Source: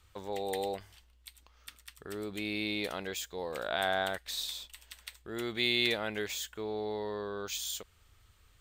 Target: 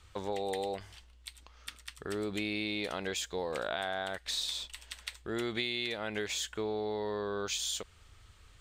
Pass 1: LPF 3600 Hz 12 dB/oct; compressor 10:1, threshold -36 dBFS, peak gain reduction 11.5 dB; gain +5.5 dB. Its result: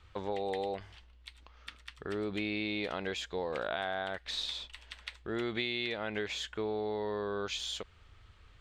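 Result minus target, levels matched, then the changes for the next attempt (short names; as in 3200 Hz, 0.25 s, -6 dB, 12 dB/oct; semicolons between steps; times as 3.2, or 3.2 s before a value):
8000 Hz band -9.5 dB
change: LPF 9200 Hz 12 dB/oct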